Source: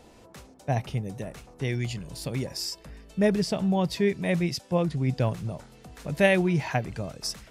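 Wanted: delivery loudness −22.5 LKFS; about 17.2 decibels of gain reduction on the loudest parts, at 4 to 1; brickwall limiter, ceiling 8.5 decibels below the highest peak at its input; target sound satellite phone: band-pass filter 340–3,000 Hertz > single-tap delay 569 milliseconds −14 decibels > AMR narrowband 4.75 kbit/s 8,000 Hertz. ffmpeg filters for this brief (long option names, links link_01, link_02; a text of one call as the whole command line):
ffmpeg -i in.wav -af "acompressor=threshold=-38dB:ratio=4,alimiter=level_in=8.5dB:limit=-24dB:level=0:latency=1,volume=-8.5dB,highpass=340,lowpass=3000,aecho=1:1:569:0.2,volume=28dB" -ar 8000 -c:a libopencore_amrnb -b:a 4750 out.amr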